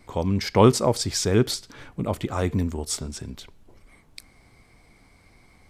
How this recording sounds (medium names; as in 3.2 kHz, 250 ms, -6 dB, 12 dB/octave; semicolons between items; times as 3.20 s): noise floor -57 dBFS; spectral tilt -5.0 dB/octave